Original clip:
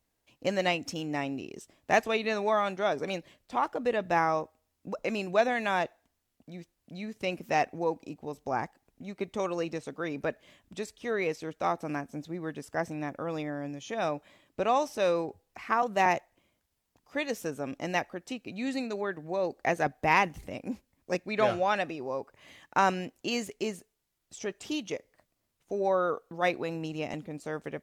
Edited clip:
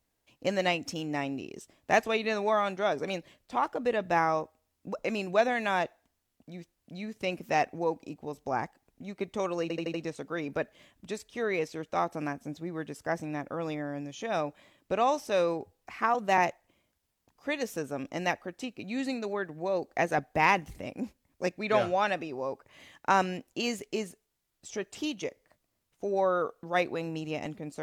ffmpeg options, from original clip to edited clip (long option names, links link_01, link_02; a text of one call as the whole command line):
ffmpeg -i in.wav -filter_complex "[0:a]asplit=5[link_01][link_02][link_03][link_04][link_05];[link_01]atrim=end=9.702[link_06];[link_02]atrim=start=9.618:end=9.702[link_07];[link_03]atrim=start=9.618:end=9.702[link_08];[link_04]atrim=start=9.618:end=9.702[link_09];[link_05]atrim=start=9.618[link_10];[link_06][link_07]acrossfade=duration=0.004:curve1=hsin:curve2=hsin[link_11];[link_11][link_08]acrossfade=duration=0.004:curve1=hsin:curve2=hsin[link_12];[link_12][link_09]acrossfade=duration=0.004:curve1=hsin:curve2=hsin[link_13];[link_13][link_10]acrossfade=duration=0.004:curve1=hsin:curve2=hsin" out.wav